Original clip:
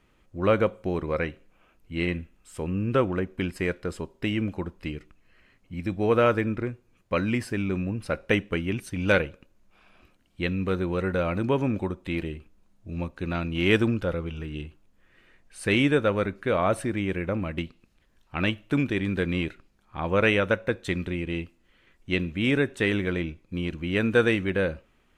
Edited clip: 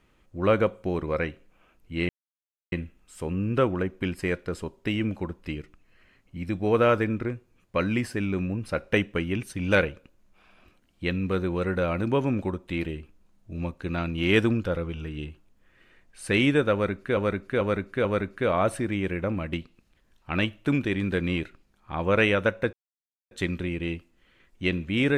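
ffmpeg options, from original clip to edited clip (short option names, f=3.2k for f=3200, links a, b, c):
-filter_complex "[0:a]asplit=6[a][b][c][d][e][f];[a]atrim=end=2.09,asetpts=PTS-STARTPTS,afade=t=out:st=2.086:d=0.004:c=hsin,apad=pad_dur=0.63[g];[b]atrim=start=2.09:end=16.542,asetpts=PTS-STARTPTS,afade=t=in:d=0.004:c=hsin[h];[c]atrim=start=16.098:end=16.542[i];[d]atrim=start=16.098:end=16.542[j];[e]atrim=start=16.098:end=20.78,asetpts=PTS-STARTPTS,afade=t=out:st=4.678:d=0.004:c=hsin,apad=pad_dur=0.58[k];[f]atrim=start=20.78,asetpts=PTS-STARTPTS,afade=t=in:d=0.004:c=hsin[l];[g][h]concat=n=2:v=0:a=1[m];[m][i]acrossfade=d=0.004:c1=hsin:c2=hsin[n];[n][j]acrossfade=d=0.004:c1=hsin:c2=hsin[o];[k][l]concat=n=2:v=0:a=1[p];[o][p]acrossfade=d=0.004:c1=hsin:c2=hsin"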